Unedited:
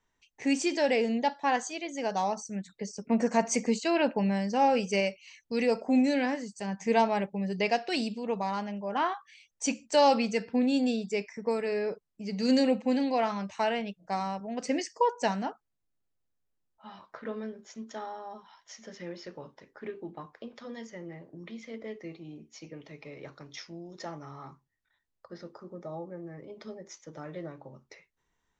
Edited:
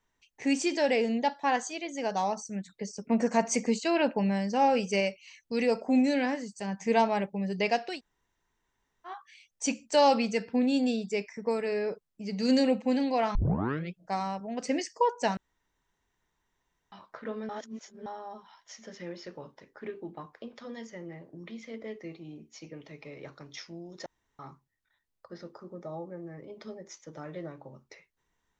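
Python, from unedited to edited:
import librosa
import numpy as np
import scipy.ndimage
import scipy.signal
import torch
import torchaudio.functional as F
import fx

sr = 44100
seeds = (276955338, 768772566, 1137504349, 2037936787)

y = fx.edit(x, sr, fx.room_tone_fill(start_s=7.93, length_s=1.19, crossfade_s=0.16),
    fx.tape_start(start_s=13.35, length_s=0.62),
    fx.room_tone_fill(start_s=15.37, length_s=1.55),
    fx.reverse_span(start_s=17.49, length_s=0.57),
    fx.room_tone_fill(start_s=24.06, length_s=0.33), tone=tone)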